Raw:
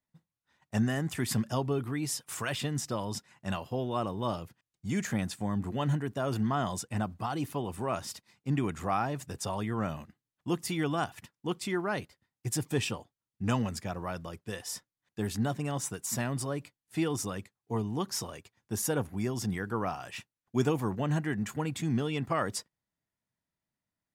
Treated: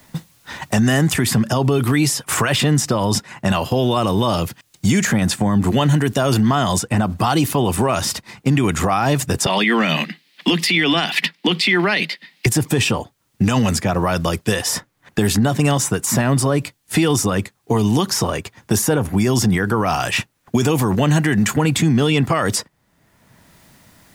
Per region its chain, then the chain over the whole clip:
9.46–12.46 steep high-pass 160 Hz 96 dB/oct + band shelf 3000 Hz +16 dB
whole clip: maximiser +26 dB; three-band squash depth 70%; gain -7 dB

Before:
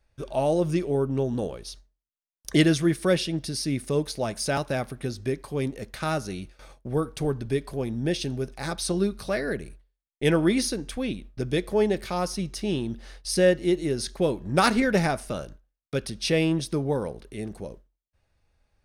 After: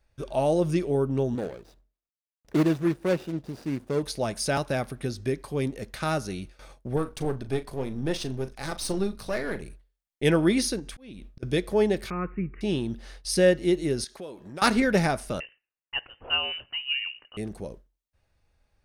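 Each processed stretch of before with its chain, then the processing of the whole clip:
1.35–4.03 median filter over 41 samples + low shelf 120 Hz -10.5 dB + notches 50/100 Hz
6.96–9.62 half-wave gain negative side -7 dB + doubler 38 ms -12.5 dB
10.79–11.43 compressor 2.5:1, threshold -36 dBFS + auto swell 0.255 s
12.1–12.61 steep low-pass 2500 Hz 96 dB/oct + band shelf 710 Hz -13 dB 1 oct
14.04–14.62 HPF 450 Hz 6 dB/oct + compressor 3:1, threshold -39 dBFS
15.4–17.37 HPF 420 Hz 24 dB/oct + de-esser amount 85% + inverted band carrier 3300 Hz
whole clip: dry

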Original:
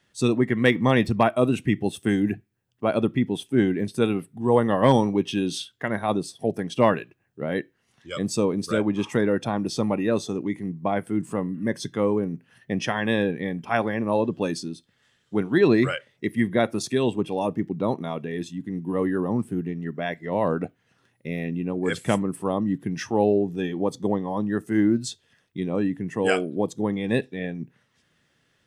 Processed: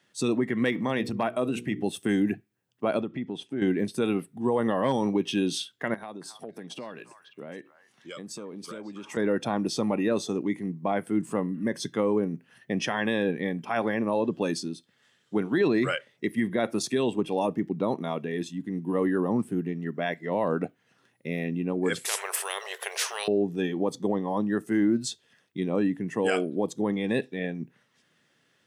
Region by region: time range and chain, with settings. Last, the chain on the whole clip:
0.74–1.83 notches 60/120/180/240/300/360/420/480 Hz + compressor 2:1, threshold -26 dBFS
3.01–3.62 air absorption 87 m + compressor 2.5:1, threshold -31 dBFS
5.94–9.17 HPF 120 Hz + compressor, threshold -36 dBFS + delay with a stepping band-pass 0.274 s, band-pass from 1200 Hz, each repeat 1.4 oct, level -8.5 dB
22.05–23.28 brick-wall FIR high-pass 400 Hz + spectral compressor 10:1
whole clip: limiter -14.5 dBFS; HPF 160 Hz 12 dB/oct

